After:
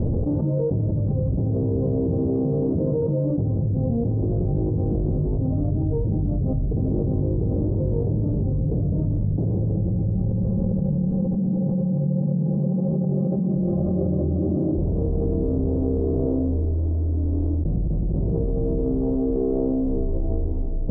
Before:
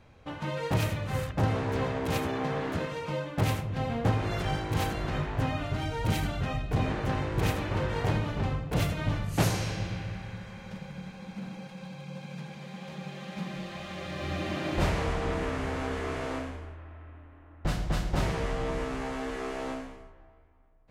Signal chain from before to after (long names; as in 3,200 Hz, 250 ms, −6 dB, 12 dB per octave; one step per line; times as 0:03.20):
inverse Chebyshev low-pass filter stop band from 2,700 Hz, stop band 80 dB
envelope flattener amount 100%